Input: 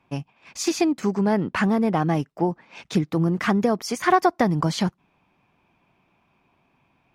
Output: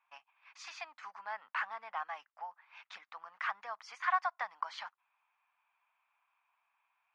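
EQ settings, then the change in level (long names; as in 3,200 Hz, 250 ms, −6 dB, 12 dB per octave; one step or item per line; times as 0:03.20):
inverse Chebyshev high-pass filter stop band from 390 Hz, stop band 50 dB
head-to-tape spacing loss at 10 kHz 35 dB
−3.0 dB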